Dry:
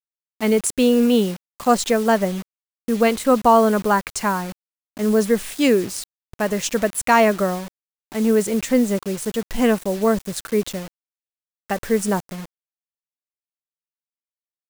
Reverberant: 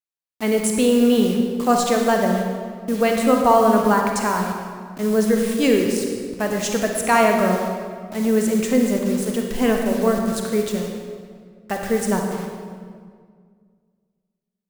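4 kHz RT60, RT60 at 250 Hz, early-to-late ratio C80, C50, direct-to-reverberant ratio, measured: 1.3 s, 2.3 s, 4.0 dB, 2.5 dB, 1.5 dB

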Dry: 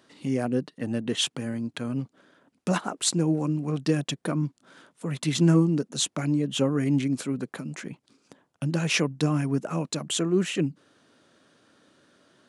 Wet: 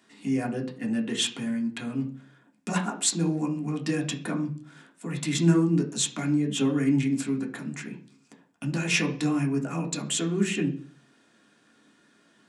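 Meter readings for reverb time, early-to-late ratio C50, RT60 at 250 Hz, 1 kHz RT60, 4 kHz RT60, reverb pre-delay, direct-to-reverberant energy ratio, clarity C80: 0.45 s, 12.5 dB, 0.55 s, 0.40 s, 0.50 s, 3 ms, -0.5 dB, 17.0 dB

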